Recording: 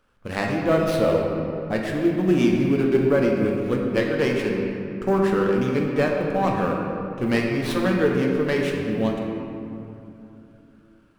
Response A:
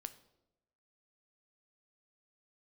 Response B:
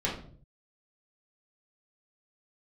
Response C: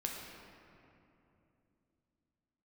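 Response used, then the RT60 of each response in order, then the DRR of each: C; 0.95, 0.50, 2.9 s; 10.5, -6.5, -1.0 dB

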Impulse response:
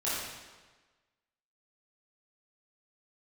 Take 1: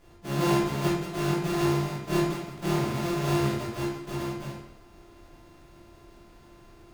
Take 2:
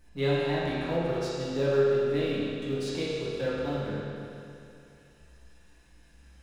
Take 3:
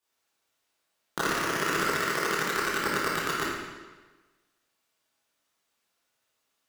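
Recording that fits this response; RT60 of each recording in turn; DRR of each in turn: 3; 0.70, 2.6, 1.3 s; -7.0, -9.0, -10.5 dB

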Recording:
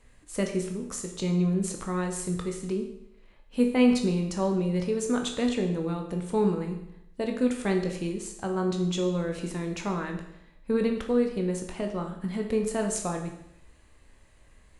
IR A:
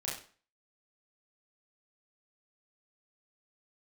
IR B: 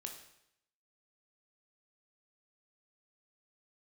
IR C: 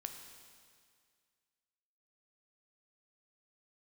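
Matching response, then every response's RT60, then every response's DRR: B; 0.40, 0.75, 2.0 s; -6.0, 3.0, 4.5 dB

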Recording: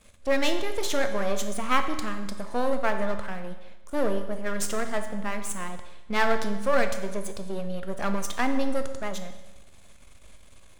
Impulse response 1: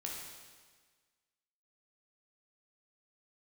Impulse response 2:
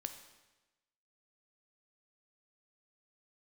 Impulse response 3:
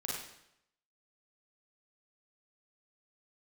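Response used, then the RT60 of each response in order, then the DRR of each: 2; 1.5, 1.1, 0.80 s; -2.5, 7.0, -5.0 dB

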